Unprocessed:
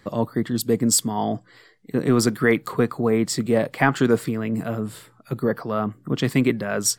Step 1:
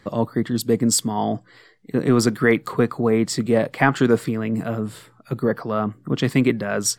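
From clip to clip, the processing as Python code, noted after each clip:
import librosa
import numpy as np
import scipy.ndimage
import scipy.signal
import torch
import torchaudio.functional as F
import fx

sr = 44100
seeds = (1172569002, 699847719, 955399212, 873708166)

y = fx.high_shelf(x, sr, hz=9800.0, db=-7.0)
y = y * librosa.db_to_amplitude(1.5)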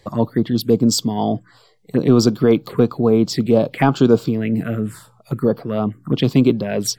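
y = fx.env_phaser(x, sr, low_hz=230.0, high_hz=1900.0, full_db=-17.0)
y = y * librosa.db_to_amplitude(4.5)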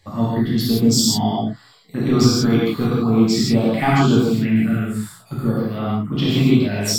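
y = fx.peak_eq(x, sr, hz=480.0, db=-10.5, octaves=1.2)
y = fx.rev_gated(y, sr, seeds[0], gate_ms=200, shape='flat', drr_db=-8.0)
y = y * librosa.db_to_amplitude(-4.5)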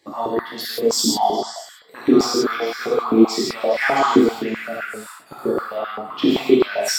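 y = fx.echo_stepped(x, sr, ms=103, hz=940.0, octaves=0.7, feedback_pct=70, wet_db=-5)
y = fx.filter_held_highpass(y, sr, hz=7.7, low_hz=310.0, high_hz=1600.0)
y = y * librosa.db_to_amplitude(-2.0)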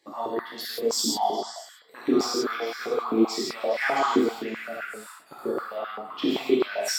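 y = fx.highpass(x, sr, hz=250.0, slope=6)
y = y * librosa.db_to_amplitude(-6.0)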